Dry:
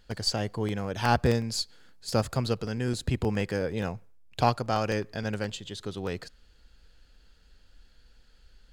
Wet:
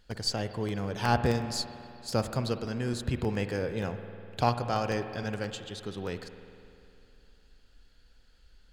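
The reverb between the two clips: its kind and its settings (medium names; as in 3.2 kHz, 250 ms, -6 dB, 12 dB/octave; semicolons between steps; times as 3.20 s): spring tank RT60 2.7 s, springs 50 ms, chirp 75 ms, DRR 9 dB; trim -2.5 dB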